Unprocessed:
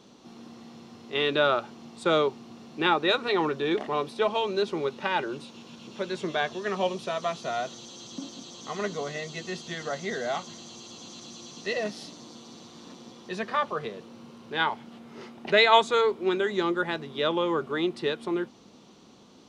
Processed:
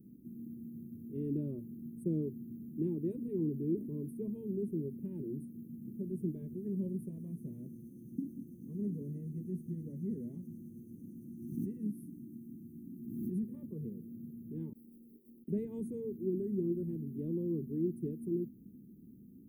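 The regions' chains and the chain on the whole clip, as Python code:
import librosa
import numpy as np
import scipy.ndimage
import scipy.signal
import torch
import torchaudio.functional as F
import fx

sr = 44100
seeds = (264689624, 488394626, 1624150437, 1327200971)

y = fx.chain(x, sr, fx.cheby1_bandstop(low_hz=370.0, high_hz=1000.0, order=2),
    fx.pre_swell(db_per_s=43.0), at=(11.29, 13.44))
y = fx.chain(y, sr, fx.highpass(hz=500.0, slope=12),
    fx.over_compress(threshold_db=-50.0, ratio=-0.5),
    fx.resample_linear(factor=6), at=(14.73, 15.48))
y = scipy.signal.sosfilt(scipy.signal.cheby2(4, 50, [680.0, 7900.0], 'bandstop', fs=sr, output='sos'), y)
y = fx.high_shelf_res(y, sr, hz=5800.0, db=13.0, q=3.0)
y = y * 10.0 ** (2.5 / 20.0)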